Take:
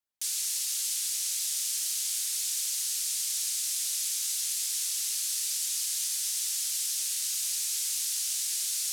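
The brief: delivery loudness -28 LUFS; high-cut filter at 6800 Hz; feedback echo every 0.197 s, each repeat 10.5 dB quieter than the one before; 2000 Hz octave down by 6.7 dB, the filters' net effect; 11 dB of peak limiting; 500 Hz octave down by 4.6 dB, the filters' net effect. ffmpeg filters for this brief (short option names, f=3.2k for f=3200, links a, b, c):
-af "lowpass=6.8k,equalizer=f=500:t=o:g=-5.5,equalizer=f=2k:t=o:g=-9,alimiter=level_in=8.5dB:limit=-24dB:level=0:latency=1,volume=-8.5dB,aecho=1:1:197|394|591:0.299|0.0896|0.0269,volume=10.5dB"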